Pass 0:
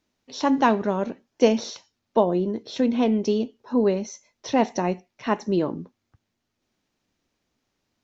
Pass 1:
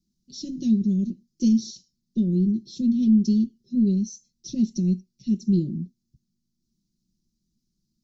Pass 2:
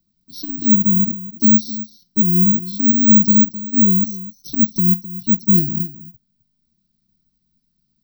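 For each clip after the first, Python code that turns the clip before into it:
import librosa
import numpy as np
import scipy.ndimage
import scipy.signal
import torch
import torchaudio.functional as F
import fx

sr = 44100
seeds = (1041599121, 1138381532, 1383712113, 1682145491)

y1 = scipy.signal.sosfilt(scipy.signal.cheby1(3, 1.0, [260.0, 4600.0], 'bandstop', fs=sr, output='sos'), x)
y1 = fx.low_shelf(y1, sr, hz=310.0, db=8.5)
y1 = y1 + 0.88 * np.pad(y1, (int(5.5 * sr / 1000.0), 0))[:len(y1)]
y1 = y1 * 10.0 ** (-3.5 / 20.0)
y2 = fx.fixed_phaser(y1, sr, hz=2200.0, stages=6)
y2 = y2 + 10.0 ** (-15.0 / 20.0) * np.pad(y2, (int(260 * sr / 1000.0), 0))[:len(y2)]
y2 = (np.kron(y2[::2], np.eye(2)[0]) * 2)[:len(y2)]
y2 = y2 * 10.0 ** (5.5 / 20.0)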